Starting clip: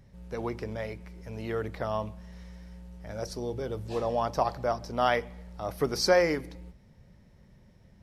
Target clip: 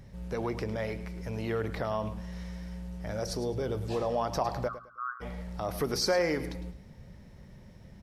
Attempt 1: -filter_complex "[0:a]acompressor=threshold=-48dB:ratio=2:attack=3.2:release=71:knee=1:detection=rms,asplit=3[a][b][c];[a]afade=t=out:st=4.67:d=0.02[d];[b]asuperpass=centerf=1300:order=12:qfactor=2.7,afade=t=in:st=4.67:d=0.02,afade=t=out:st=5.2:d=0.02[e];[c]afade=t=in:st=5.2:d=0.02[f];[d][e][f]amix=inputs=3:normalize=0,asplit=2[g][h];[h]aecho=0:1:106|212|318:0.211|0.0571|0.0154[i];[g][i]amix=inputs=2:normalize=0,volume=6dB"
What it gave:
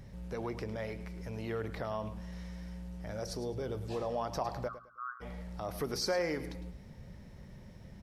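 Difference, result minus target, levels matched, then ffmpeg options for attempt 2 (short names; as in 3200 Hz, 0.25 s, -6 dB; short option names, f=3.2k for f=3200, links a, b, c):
compressor: peak gain reduction +5 dB
-filter_complex "[0:a]acompressor=threshold=-37.5dB:ratio=2:attack=3.2:release=71:knee=1:detection=rms,asplit=3[a][b][c];[a]afade=t=out:st=4.67:d=0.02[d];[b]asuperpass=centerf=1300:order=12:qfactor=2.7,afade=t=in:st=4.67:d=0.02,afade=t=out:st=5.2:d=0.02[e];[c]afade=t=in:st=5.2:d=0.02[f];[d][e][f]amix=inputs=3:normalize=0,asplit=2[g][h];[h]aecho=0:1:106|212|318:0.211|0.0571|0.0154[i];[g][i]amix=inputs=2:normalize=0,volume=6dB"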